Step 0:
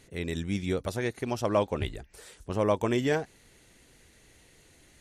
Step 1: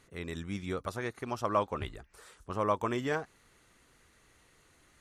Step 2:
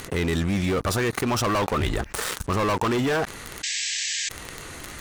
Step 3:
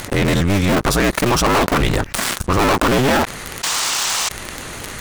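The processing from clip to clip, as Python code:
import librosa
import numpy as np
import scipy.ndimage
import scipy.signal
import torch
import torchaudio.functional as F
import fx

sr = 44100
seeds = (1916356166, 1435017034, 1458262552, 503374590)

y1 = fx.peak_eq(x, sr, hz=1200.0, db=12.0, octaves=0.73)
y1 = y1 * librosa.db_to_amplitude(-7.0)
y2 = fx.leveller(y1, sr, passes=5)
y2 = fx.spec_paint(y2, sr, seeds[0], shape='noise', start_s=3.63, length_s=0.66, low_hz=1600.0, high_hz=8100.0, level_db=-38.0)
y2 = fx.env_flatten(y2, sr, amount_pct=70)
y2 = y2 * librosa.db_to_amplitude(-4.0)
y3 = fx.cycle_switch(y2, sr, every=2, mode='inverted')
y3 = y3 * librosa.db_to_amplitude(8.0)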